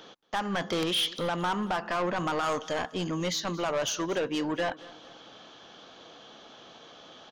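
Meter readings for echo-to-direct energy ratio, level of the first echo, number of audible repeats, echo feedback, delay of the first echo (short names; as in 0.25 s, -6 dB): -19.0 dB, -20.0 dB, 2, 41%, 0.226 s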